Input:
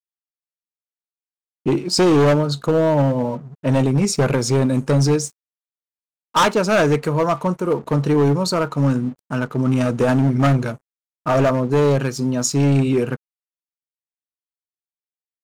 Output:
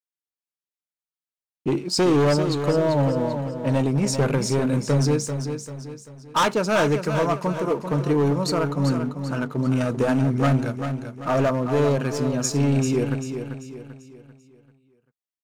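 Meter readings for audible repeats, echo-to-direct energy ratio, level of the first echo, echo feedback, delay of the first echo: 4, −7.0 dB, −8.0 dB, 41%, 391 ms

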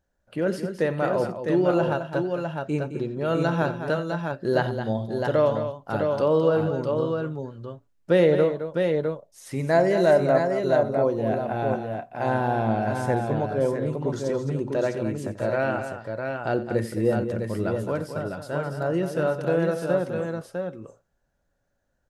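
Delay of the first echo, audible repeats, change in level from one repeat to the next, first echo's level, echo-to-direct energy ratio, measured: 89 ms, 3, repeats not evenly spaced, −15.5 dB, −3.5 dB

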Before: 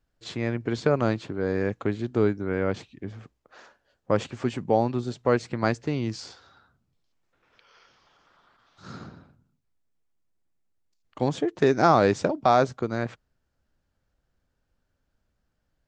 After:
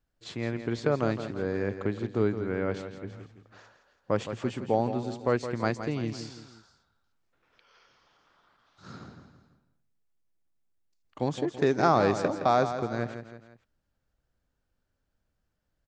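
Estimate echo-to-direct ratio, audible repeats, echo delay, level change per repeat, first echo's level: −9.0 dB, 3, 166 ms, −6.5 dB, −10.0 dB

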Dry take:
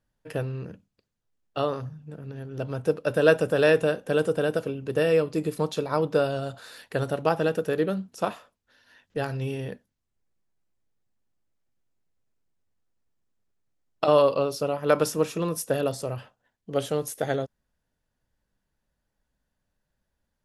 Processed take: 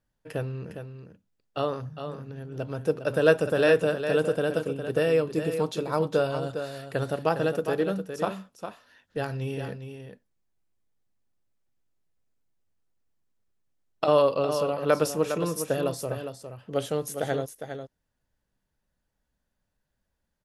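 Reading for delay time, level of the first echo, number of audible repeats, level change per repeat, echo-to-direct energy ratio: 407 ms, −8.5 dB, 1, repeats not evenly spaced, −8.5 dB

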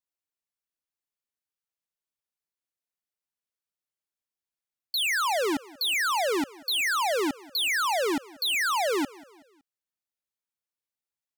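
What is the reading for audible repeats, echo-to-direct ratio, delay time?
2, −21.5 dB, 187 ms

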